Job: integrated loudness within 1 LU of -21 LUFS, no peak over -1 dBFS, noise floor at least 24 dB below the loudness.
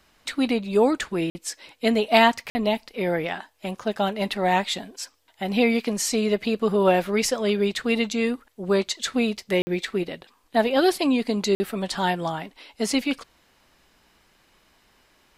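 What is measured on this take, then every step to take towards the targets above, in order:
dropouts 4; longest dropout 50 ms; loudness -24.0 LUFS; peak level -1.0 dBFS; loudness target -21.0 LUFS
-> interpolate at 1.30/2.50/9.62/11.55 s, 50 ms; trim +3 dB; peak limiter -1 dBFS

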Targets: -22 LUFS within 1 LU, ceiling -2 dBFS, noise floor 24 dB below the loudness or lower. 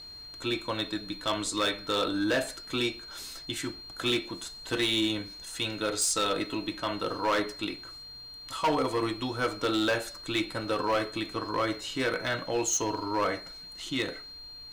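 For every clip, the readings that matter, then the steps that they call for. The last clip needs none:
clipped samples 1.4%; clipping level -21.5 dBFS; steady tone 4.2 kHz; tone level -43 dBFS; loudness -30.0 LUFS; peak level -21.5 dBFS; loudness target -22.0 LUFS
-> clip repair -21.5 dBFS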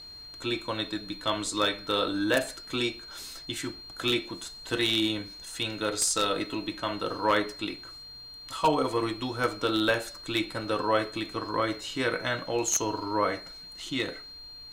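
clipped samples 0.0%; steady tone 4.2 kHz; tone level -43 dBFS
-> band-stop 4.2 kHz, Q 30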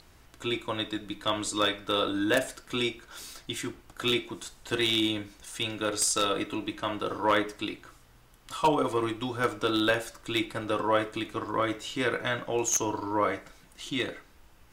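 steady tone not found; loudness -29.0 LUFS; peak level -12.0 dBFS; loudness target -22.0 LUFS
-> trim +7 dB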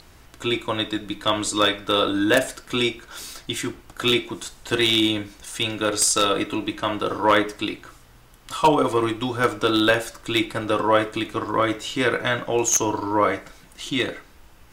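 loudness -22.0 LUFS; peak level -5.0 dBFS; noise floor -50 dBFS

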